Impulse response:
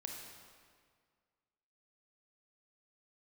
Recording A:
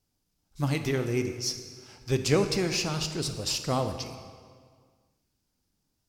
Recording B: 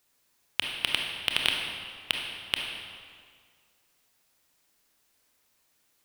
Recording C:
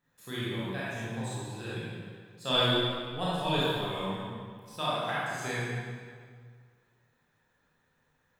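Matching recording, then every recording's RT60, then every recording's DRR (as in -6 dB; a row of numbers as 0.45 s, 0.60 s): B; 1.9 s, 1.9 s, 1.9 s; 7.5 dB, 0.5 dB, -9.0 dB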